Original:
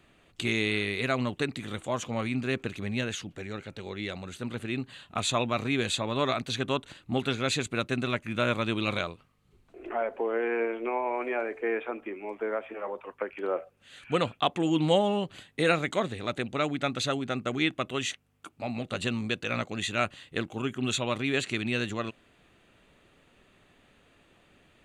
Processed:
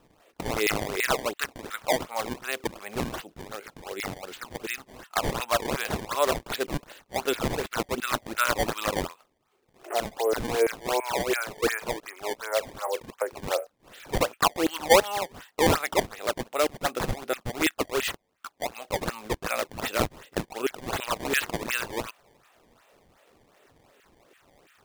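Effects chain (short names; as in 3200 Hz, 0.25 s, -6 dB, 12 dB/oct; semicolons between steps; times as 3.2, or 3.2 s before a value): LFO high-pass saw down 3 Hz 360–2000 Hz; decimation with a swept rate 19×, swing 160% 2.7 Hz; gain +1 dB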